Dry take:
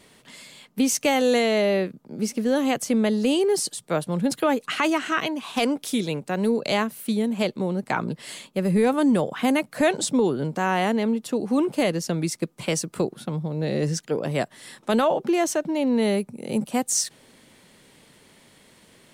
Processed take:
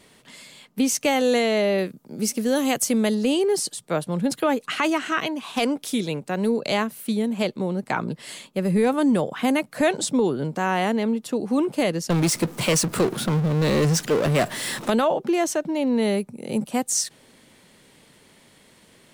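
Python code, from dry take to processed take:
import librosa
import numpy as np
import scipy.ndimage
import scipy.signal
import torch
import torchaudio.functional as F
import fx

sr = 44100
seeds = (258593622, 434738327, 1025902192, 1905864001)

y = fx.high_shelf(x, sr, hz=5400.0, db=11.5, at=(1.78, 3.15))
y = fx.power_curve(y, sr, exponent=0.5, at=(12.1, 14.9))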